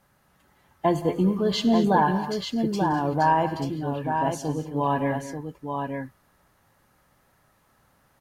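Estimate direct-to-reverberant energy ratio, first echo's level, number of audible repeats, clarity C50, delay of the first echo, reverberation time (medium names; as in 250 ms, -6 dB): no reverb, -19.0 dB, 6, no reverb, 72 ms, no reverb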